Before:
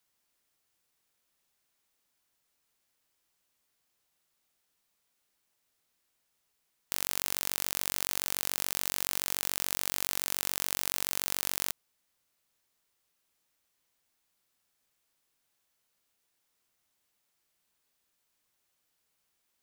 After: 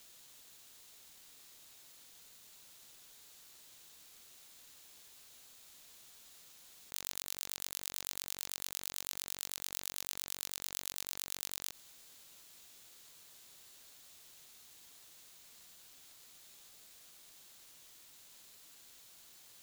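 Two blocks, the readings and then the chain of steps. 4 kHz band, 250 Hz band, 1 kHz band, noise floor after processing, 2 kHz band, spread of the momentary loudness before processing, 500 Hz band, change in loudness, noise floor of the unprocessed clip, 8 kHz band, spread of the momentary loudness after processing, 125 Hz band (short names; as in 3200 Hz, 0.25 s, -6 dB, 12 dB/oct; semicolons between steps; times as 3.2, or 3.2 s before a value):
-7.0 dB, -11.0 dB, -12.0 dB, -59 dBFS, -11.0 dB, 1 LU, -11.5 dB, -9.0 dB, -78 dBFS, -7.5 dB, 16 LU, -11.0 dB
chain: HPF 1300 Hz 12 dB/oct; bell 5400 Hz +6 dB 0.42 oct; limiter -12 dBFS, peak gain reduction 7.5 dB; negative-ratio compressor -49 dBFS, ratio -0.5; ring modulator 1500 Hz; gain +11.5 dB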